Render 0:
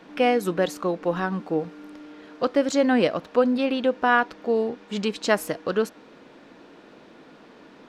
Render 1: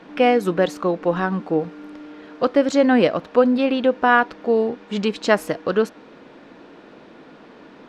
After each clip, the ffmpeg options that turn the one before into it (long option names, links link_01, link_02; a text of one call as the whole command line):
ffmpeg -i in.wav -af "lowpass=frequency=3900:poles=1,volume=4.5dB" out.wav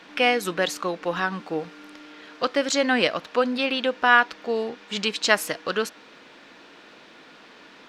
ffmpeg -i in.wav -af "tiltshelf=frequency=1200:gain=-9,volume=-1dB" out.wav